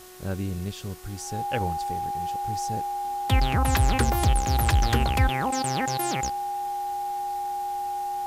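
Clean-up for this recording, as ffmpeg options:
-af "adeclick=t=4,bandreject=f=366.9:t=h:w=4,bandreject=f=733.8:t=h:w=4,bandreject=f=1.1007k:t=h:w=4,bandreject=f=1.4676k:t=h:w=4,bandreject=f=1.8345k:t=h:w=4,bandreject=f=810:w=30,afwtdn=0.004"

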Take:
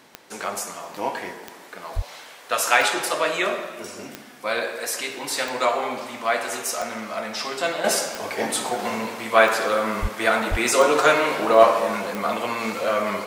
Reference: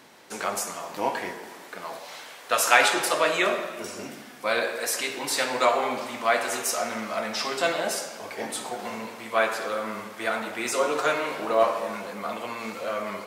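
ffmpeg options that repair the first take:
-filter_complex "[0:a]adeclick=t=4,asplit=3[a][b][c];[a]afade=t=out:st=1.95:d=0.02[d];[b]highpass=f=140:w=0.5412,highpass=f=140:w=1.3066,afade=t=in:st=1.95:d=0.02,afade=t=out:st=2.07:d=0.02[e];[c]afade=t=in:st=2.07:d=0.02[f];[d][e][f]amix=inputs=3:normalize=0,asplit=3[g][h][i];[g]afade=t=out:st=10.01:d=0.02[j];[h]highpass=f=140:w=0.5412,highpass=f=140:w=1.3066,afade=t=in:st=10.01:d=0.02,afade=t=out:st=10.13:d=0.02[k];[i]afade=t=in:st=10.13:d=0.02[l];[j][k][l]amix=inputs=3:normalize=0,asplit=3[m][n][o];[m]afade=t=out:st=10.5:d=0.02[p];[n]highpass=f=140:w=0.5412,highpass=f=140:w=1.3066,afade=t=in:st=10.5:d=0.02,afade=t=out:st=10.62:d=0.02[q];[o]afade=t=in:st=10.62:d=0.02[r];[p][q][r]amix=inputs=3:normalize=0,asetnsamples=n=441:p=0,asendcmd='7.84 volume volume -7.5dB',volume=0dB"

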